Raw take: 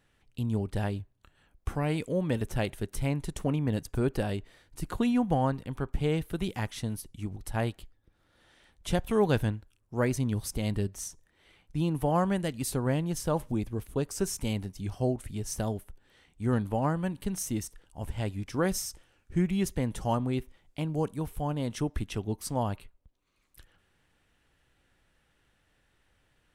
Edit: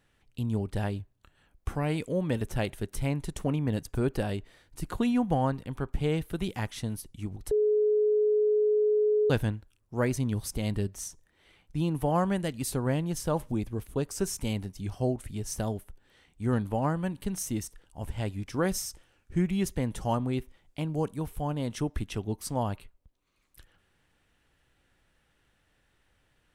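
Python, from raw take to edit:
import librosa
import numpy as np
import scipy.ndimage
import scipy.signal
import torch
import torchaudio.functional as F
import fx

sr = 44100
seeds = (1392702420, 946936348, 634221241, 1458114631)

y = fx.edit(x, sr, fx.bleep(start_s=7.51, length_s=1.79, hz=423.0, db=-21.0), tone=tone)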